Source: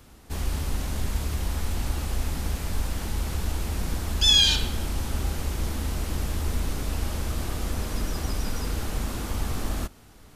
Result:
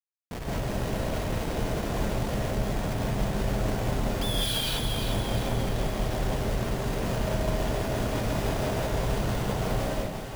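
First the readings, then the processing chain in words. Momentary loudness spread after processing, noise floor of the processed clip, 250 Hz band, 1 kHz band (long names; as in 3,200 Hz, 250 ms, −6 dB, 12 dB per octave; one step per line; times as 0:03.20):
3 LU, −36 dBFS, +4.0 dB, +5.0 dB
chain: Chebyshev band-pass filter 530–4,600 Hz, order 3
reverb reduction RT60 0.54 s
parametric band 1,300 Hz −10.5 dB 0.56 octaves
in parallel at −0.5 dB: downward compressor 20 to 1, threshold −54 dBFS, peak gain reduction 36.5 dB
on the sum: comparator with hysteresis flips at −36.5 dBFS
on a send: delay that swaps between a low-pass and a high-pass 174 ms, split 980 Hz, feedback 72%, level −3 dB
on the sum: reverb whose tail is shaped and stops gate 230 ms rising, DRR −4.5 dB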